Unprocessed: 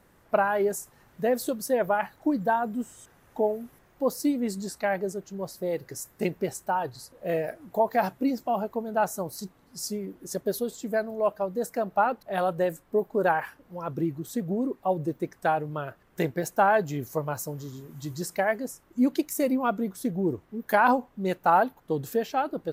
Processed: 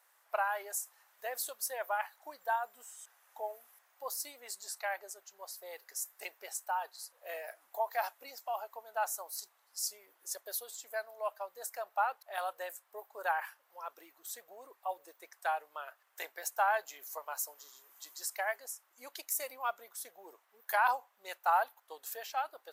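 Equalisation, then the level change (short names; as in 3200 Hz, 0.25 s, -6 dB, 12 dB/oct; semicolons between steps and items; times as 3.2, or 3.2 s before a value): HPF 730 Hz 24 dB/oct; high shelf 5300 Hz +8 dB; -6.5 dB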